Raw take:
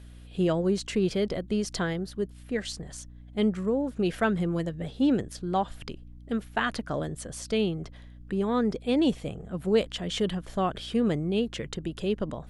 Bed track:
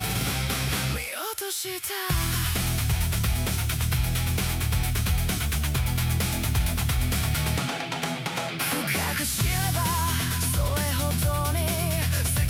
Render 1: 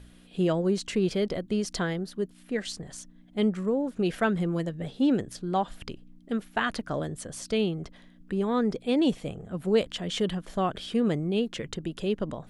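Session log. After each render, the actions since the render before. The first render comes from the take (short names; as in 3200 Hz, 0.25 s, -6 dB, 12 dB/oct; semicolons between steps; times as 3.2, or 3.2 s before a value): de-hum 60 Hz, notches 2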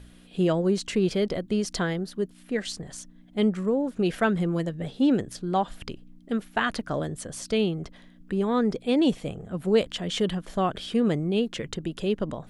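gain +2 dB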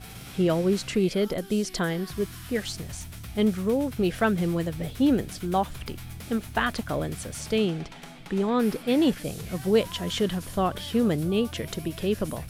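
add bed track -15.5 dB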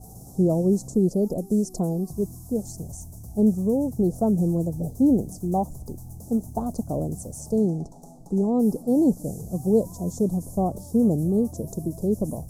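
elliptic band-stop 780–6400 Hz, stop band 60 dB; dynamic EQ 200 Hz, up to +5 dB, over -38 dBFS, Q 0.9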